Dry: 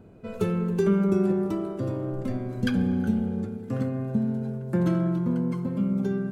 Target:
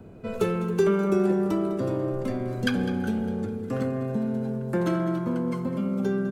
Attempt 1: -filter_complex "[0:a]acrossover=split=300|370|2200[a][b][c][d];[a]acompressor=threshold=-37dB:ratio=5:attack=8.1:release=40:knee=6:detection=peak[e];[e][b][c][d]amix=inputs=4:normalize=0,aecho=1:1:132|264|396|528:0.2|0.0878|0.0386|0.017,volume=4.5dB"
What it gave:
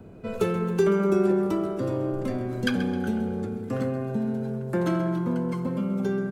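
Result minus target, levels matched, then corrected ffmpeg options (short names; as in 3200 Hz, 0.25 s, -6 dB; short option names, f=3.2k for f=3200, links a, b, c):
echo 72 ms early
-filter_complex "[0:a]acrossover=split=300|370|2200[a][b][c][d];[a]acompressor=threshold=-37dB:ratio=5:attack=8.1:release=40:knee=6:detection=peak[e];[e][b][c][d]amix=inputs=4:normalize=0,aecho=1:1:204|408|612|816:0.2|0.0878|0.0386|0.017,volume=4.5dB"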